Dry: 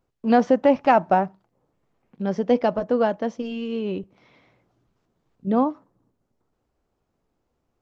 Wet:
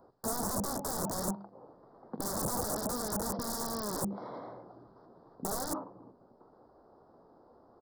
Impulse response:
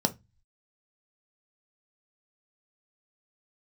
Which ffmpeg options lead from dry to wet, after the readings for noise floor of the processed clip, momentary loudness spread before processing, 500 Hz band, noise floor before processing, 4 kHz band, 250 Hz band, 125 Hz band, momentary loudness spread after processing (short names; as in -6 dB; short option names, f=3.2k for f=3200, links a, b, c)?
-62 dBFS, 12 LU, -16.5 dB, -76 dBFS, -1.5 dB, -14.5 dB, -6.0 dB, 15 LU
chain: -filter_complex "[0:a]bandreject=f=50:t=h:w=6,bandreject=f=100:t=h:w=6,bandreject=f=150:t=h:w=6,bandreject=f=200:t=h:w=6,acrossover=split=230[a][b];[b]acompressor=threshold=-26dB:ratio=10[c];[a][c]amix=inputs=2:normalize=0,asplit=2[d][e];[e]highpass=f=720:p=1,volume=30dB,asoftclip=type=tanh:threshold=-13.5dB[f];[d][f]amix=inputs=2:normalize=0,lowpass=f=2k:p=1,volume=-6dB,aresample=11025,aeval=exprs='(mod(18.8*val(0)+1,2)-1)/18.8':c=same,aresample=44100,acontrast=88,aeval=exprs='(mod(7.5*val(0)+1,2)-1)/7.5':c=same,asuperstop=centerf=2600:order=4:qfactor=0.51,volume=-8dB"